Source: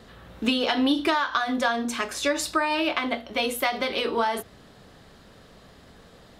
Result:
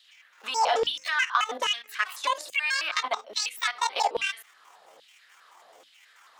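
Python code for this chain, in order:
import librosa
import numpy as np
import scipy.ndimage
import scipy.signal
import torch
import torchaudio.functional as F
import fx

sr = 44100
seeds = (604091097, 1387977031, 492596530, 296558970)

y = fx.pitch_trill(x, sr, semitones=10.0, every_ms=108)
y = fx.level_steps(y, sr, step_db=14)
y = fx.filter_lfo_highpass(y, sr, shape='saw_down', hz=1.2, low_hz=510.0, high_hz=3300.0, q=3.0)
y = fx.hum_notches(y, sr, base_hz=60, count=5)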